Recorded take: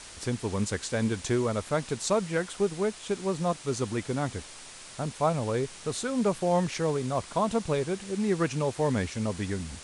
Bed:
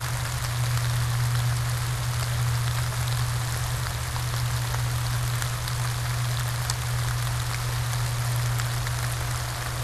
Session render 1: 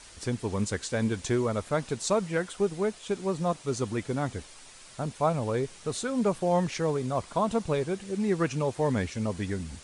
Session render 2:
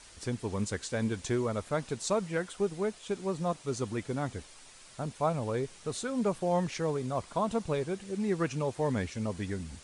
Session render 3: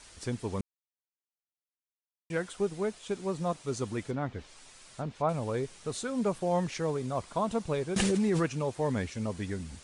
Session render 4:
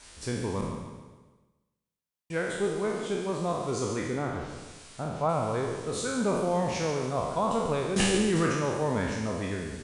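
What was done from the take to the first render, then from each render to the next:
broadband denoise 6 dB, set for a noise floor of −46 dBFS
level −3.5 dB
0:00.61–0:02.30: silence; 0:04.10–0:05.29: treble cut that deepens with the level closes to 2,800 Hz, closed at −30.5 dBFS; 0:07.96–0:08.46: envelope flattener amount 100%
peak hold with a decay on every bin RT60 1.10 s; on a send: repeating echo 143 ms, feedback 45%, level −10 dB

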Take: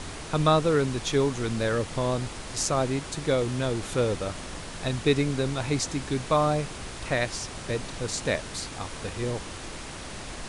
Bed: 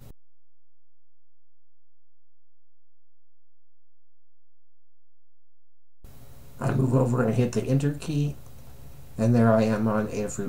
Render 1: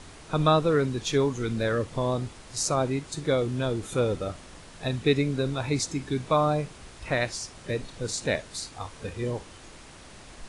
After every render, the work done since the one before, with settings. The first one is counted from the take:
noise reduction from a noise print 9 dB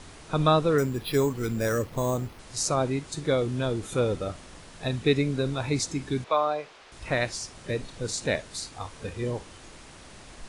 0:00.78–0:02.39: bad sample-rate conversion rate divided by 6×, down filtered, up hold
0:06.24–0:06.92: three-way crossover with the lows and the highs turned down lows −23 dB, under 400 Hz, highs −17 dB, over 5,400 Hz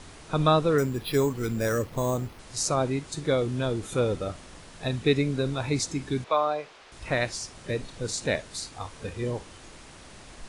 no processing that can be heard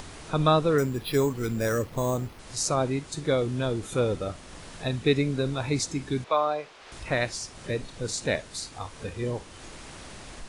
upward compression, threshold −36 dBFS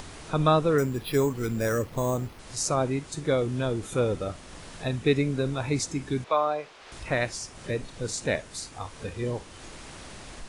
dynamic equaliser 4,100 Hz, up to −4 dB, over −49 dBFS, Q 2.4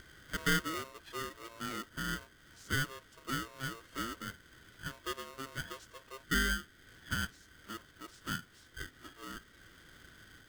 formant filter a
ring modulator with a square carrier 800 Hz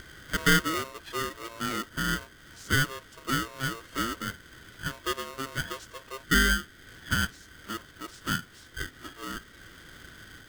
level +8.5 dB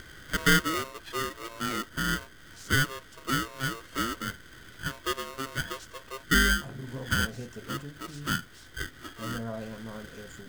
mix in bed −17 dB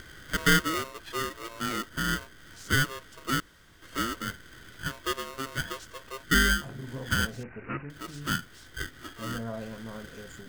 0:03.40–0:03.82: fill with room tone
0:07.43–0:07.90: bad sample-rate conversion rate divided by 8×, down none, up filtered

